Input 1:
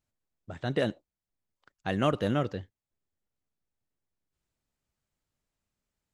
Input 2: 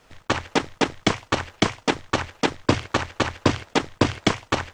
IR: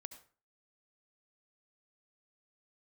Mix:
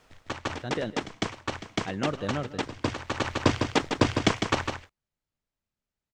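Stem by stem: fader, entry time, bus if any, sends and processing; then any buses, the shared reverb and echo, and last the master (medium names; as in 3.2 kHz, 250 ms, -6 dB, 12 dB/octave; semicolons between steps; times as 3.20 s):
-4.0 dB, 0.00 s, no send, echo send -17 dB, low-pass 6.4 kHz
-3.5 dB, 0.00 s, send -22 dB, echo send -6 dB, auto duck -24 dB, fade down 0.80 s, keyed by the first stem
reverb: on, RT60 0.40 s, pre-delay 63 ms
echo: delay 154 ms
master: none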